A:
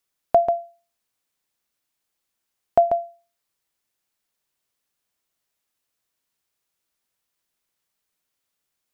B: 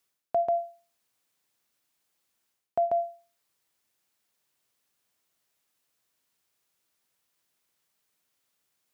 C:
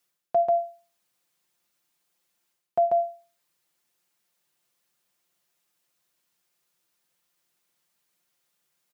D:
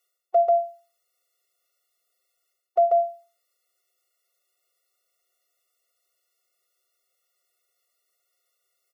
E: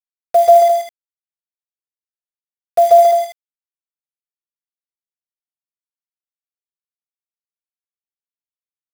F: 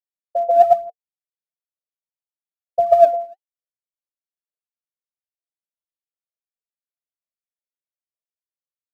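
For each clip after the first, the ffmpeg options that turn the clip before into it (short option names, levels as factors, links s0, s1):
-af "highpass=72,areverse,acompressor=threshold=0.0447:ratio=6,areverse,volume=1.33"
-af "aecho=1:1:5.7:0.65"
-af "afftfilt=real='re*eq(mod(floor(b*sr/1024/370),2),1)':imag='im*eq(mod(floor(b*sr/1024/370),2),1)':win_size=1024:overlap=0.75,volume=1.41"
-filter_complex "[0:a]acrusher=bits=5:mix=0:aa=0.000001,asplit=2[s0][s1];[s1]aecho=0:1:134.1|209.9:0.631|0.447[s2];[s0][s2]amix=inputs=2:normalize=0,volume=2.37"
-af "asuperpass=centerf=570:order=20:qfactor=2.1,aphaser=in_gain=1:out_gain=1:delay=3.9:decay=0.7:speed=1.1:type=sinusoidal,volume=0.562"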